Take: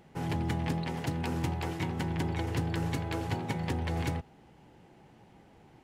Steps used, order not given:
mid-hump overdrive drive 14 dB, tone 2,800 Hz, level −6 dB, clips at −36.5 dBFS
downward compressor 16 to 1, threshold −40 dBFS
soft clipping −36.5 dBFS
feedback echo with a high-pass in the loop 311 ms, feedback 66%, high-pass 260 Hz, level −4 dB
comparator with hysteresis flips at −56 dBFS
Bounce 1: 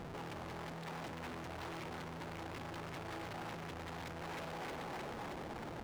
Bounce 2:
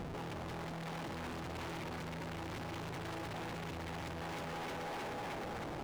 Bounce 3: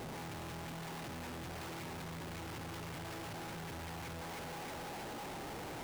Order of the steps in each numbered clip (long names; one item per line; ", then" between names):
soft clipping, then feedback echo with a high-pass in the loop, then downward compressor, then comparator with hysteresis, then mid-hump overdrive
feedback echo with a high-pass in the loop, then comparator with hysteresis, then soft clipping, then mid-hump overdrive, then downward compressor
mid-hump overdrive, then soft clipping, then feedback echo with a high-pass in the loop, then downward compressor, then comparator with hysteresis